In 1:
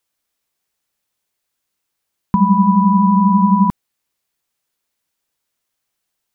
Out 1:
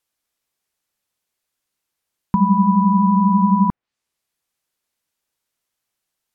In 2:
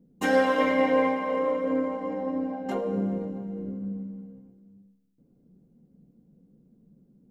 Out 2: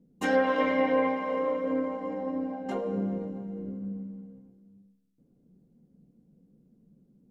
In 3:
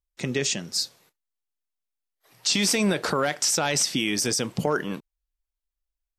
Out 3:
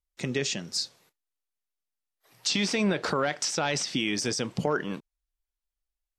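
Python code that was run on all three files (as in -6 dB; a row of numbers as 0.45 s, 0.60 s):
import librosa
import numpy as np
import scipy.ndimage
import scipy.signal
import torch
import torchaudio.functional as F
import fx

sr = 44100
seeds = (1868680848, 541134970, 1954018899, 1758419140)

y = fx.env_lowpass_down(x, sr, base_hz=1900.0, full_db=-14.5)
y = F.gain(torch.from_numpy(y), -2.5).numpy()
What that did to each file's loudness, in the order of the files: -2.5 LU, -2.5 LU, -4.0 LU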